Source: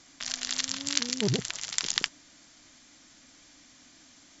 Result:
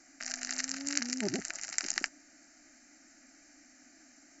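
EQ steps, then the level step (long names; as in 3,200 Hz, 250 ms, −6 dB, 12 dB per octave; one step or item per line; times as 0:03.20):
low shelf with overshoot 140 Hz −6 dB, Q 1.5
parametric band 200 Hz −5.5 dB 0.4 octaves
phaser with its sweep stopped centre 690 Hz, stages 8
0.0 dB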